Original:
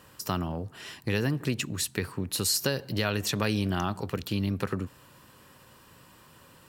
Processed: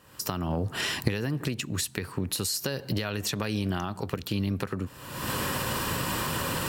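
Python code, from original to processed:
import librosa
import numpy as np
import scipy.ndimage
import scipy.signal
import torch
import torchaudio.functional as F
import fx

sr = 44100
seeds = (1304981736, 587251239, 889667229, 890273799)

y = fx.recorder_agc(x, sr, target_db=-15.5, rise_db_per_s=51.0, max_gain_db=30)
y = F.gain(torch.from_numpy(y), -4.5).numpy()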